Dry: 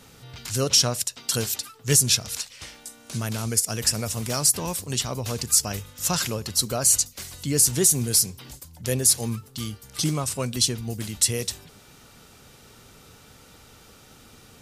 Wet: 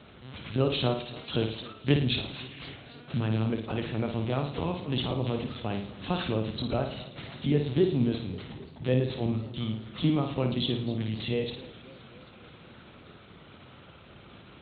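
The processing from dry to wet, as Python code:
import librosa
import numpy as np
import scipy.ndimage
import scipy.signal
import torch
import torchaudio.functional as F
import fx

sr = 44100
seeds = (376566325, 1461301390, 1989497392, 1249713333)

y = fx.lpc_vocoder(x, sr, seeds[0], excitation='pitch_kept', order=10)
y = fx.dynamic_eq(y, sr, hz=1600.0, q=1.1, threshold_db=-48.0, ratio=4.0, max_db=-7)
y = scipy.signal.sosfilt(scipy.signal.butter(2, 79.0, 'highpass', fs=sr, output='sos'), y)
y = fx.peak_eq(y, sr, hz=170.0, db=3.5, octaves=1.3)
y = fx.room_flutter(y, sr, wall_m=9.4, rt60_s=0.5)
y = fx.echo_warbled(y, sr, ms=264, feedback_pct=66, rate_hz=2.8, cents=142, wet_db=-19.0)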